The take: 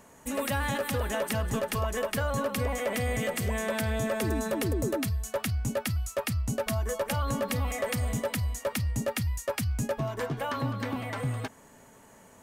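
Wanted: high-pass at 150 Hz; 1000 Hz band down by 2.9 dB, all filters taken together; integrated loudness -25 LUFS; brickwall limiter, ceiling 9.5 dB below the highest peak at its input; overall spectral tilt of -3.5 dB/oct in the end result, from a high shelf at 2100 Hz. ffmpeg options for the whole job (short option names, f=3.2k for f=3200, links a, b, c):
-af "highpass=150,equalizer=f=1k:t=o:g=-5.5,highshelf=f=2.1k:g=8,volume=7.5dB,alimiter=limit=-14.5dB:level=0:latency=1"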